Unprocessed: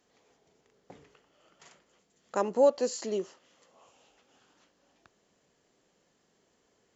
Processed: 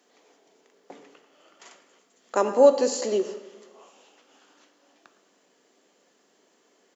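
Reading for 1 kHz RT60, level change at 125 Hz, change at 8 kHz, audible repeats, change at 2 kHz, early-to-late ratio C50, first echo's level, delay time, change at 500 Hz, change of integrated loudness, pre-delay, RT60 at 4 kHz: 1.2 s, can't be measured, can't be measured, 1, +7.0 dB, 10.5 dB, −18.0 dB, 111 ms, +7.0 dB, +6.5 dB, 3 ms, 0.90 s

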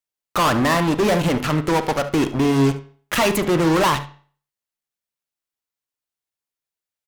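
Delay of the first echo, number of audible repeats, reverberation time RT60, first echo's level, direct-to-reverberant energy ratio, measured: 72 ms, 1, 0.45 s, −17.0 dB, 9.5 dB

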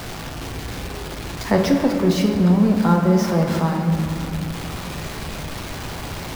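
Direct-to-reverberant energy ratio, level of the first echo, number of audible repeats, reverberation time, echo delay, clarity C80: 1.5 dB, no echo audible, no echo audible, 3.0 s, no echo audible, 5.5 dB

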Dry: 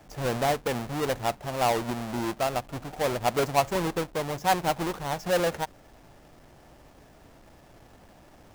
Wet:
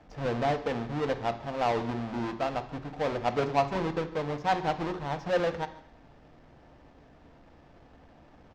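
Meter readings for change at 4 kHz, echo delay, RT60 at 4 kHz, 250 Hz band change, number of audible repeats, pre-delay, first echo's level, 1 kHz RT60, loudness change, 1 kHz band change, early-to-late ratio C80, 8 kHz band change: −6.5 dB, 147 ms, 0.65 s, −1.0 dB, 1, 3 ms, −22.0 dB, 0.70 s, −2.5 dB, −2.5 dB, 15.5 dB, below −15 dB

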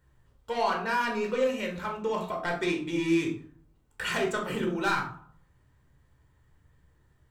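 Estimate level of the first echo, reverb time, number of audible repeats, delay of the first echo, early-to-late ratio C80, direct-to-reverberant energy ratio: no echo audible, 0.55 s, no echo audible, no echo audible, 12.0 dB, 0.5 dB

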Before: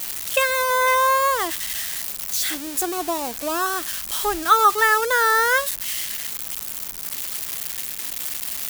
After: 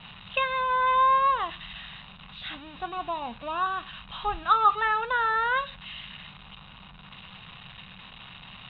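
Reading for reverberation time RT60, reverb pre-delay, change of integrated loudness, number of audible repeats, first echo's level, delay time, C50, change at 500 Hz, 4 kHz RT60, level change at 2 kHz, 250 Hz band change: 0.45 s, 3 ms, −4.5 dB, no echo audible, no echo audible, no echo audible, 22.0 dB, −11.0 dB, 0.55 s, −8.5 dB, −12.0 dB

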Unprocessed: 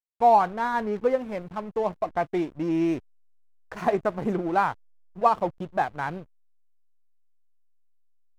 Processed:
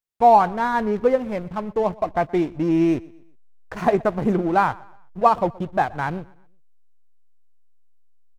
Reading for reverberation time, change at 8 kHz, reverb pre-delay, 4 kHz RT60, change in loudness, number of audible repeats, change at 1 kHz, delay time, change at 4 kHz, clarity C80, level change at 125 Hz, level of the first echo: no reverb audible, can't be measured, no reverb audible, no reverb audible, +5.0 dB, 2, +4.5 dB, 123 ms, +4.0 dB, no reverb audible, +7.5 dB, −23.0 dB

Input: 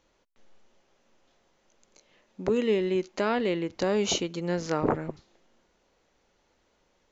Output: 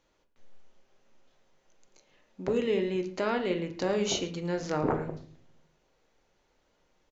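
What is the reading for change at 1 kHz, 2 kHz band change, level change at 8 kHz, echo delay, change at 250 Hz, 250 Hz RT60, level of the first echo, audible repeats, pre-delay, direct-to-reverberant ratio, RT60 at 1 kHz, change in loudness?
−2.5 dB, −2.5 dB, can't be measured, 110 ms, −2.5 dB, 0.75 s, −18.0 dB, 1, 6 ms, 5.0 dB, 0.40 s, −2.5 dB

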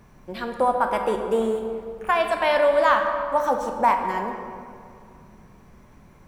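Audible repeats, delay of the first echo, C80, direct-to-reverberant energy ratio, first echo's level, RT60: no echo audible, no echo audible, 6.5 dB, 4.0 dB, no echo audible, 2.4 s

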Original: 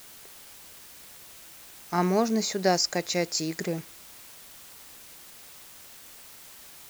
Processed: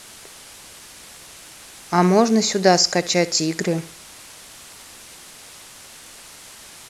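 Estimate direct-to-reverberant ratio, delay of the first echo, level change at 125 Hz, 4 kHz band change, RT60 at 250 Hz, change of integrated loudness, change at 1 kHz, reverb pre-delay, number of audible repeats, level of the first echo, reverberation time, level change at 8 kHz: no reverb audible, 67 ms, +9.0 dB, +8.5 dB, no reverb audible, +8.5 dB, +8.5 dB, no reverb audible, 2, −18.0 dB, no reverb audible, +8.5 dB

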